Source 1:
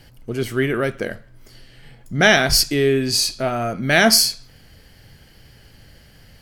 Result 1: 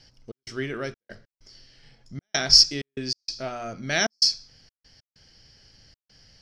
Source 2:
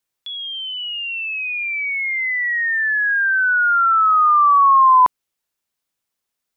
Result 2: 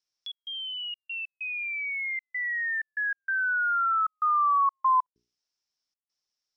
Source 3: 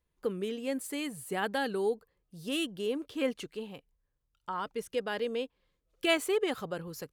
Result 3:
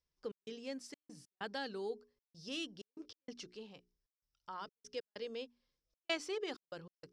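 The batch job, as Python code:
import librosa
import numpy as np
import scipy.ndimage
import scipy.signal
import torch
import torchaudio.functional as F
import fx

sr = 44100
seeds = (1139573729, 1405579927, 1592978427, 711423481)

y = fx.hum_notches(x, sr, base_hz=60, count=7)
y = fx.step_gate(y, sr, bpm=96, pattern='xx.xxx.x.xxx', floor_db=-60.0, edge_ms=4.5)
y = fx.lowpass_res(y, sr, hz=5400.0, q=8.3)
y = F.gain(torch.from_numpy(y), -10.5).numpy()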